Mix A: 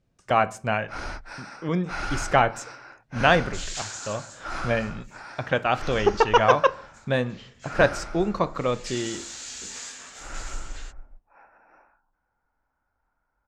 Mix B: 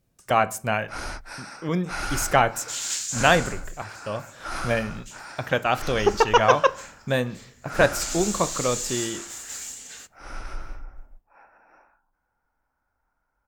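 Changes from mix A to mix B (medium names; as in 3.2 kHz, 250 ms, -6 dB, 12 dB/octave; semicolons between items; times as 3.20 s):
second sound: entry -0.85 s; master: remove distance through air 95 m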